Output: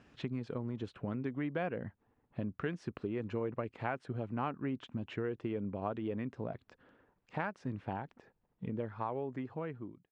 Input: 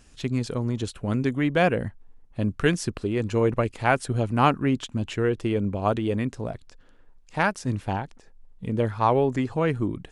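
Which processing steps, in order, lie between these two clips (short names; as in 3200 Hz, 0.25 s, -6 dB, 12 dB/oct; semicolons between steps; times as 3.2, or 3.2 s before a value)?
ending faded out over 1.92 s; compressor 4:1, threshold -34 dBFS, peak gain reduction 17 dB; BPF 120–2300 Hz; gain -1 dB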